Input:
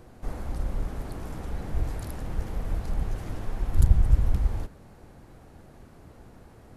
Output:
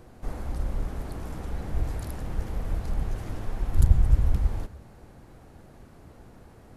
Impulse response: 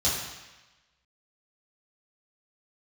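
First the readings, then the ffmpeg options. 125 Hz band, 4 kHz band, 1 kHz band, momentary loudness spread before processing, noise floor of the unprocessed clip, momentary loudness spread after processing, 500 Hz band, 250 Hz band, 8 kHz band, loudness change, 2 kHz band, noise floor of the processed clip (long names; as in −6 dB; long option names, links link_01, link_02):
+0.5 dB, 0.0 dB, 0.0 dB, 14 LU, −51 dBFS, 15 LU, 0.0 dB, 0.0 dB, 0.0 dB, +0.5 dB, 0.0 dB, −51 dBFS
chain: -filter_complex "[0:a]asplit=2[link_01][link_02];[1:a]atrim=start_sample=2205,adelay=93[link_03];[link_02][link_03]afir=irnorm=-1:irlink=0,volume=-32.5dB[link_04];[link_01][link_04]amix=inputs=2:normalize=0"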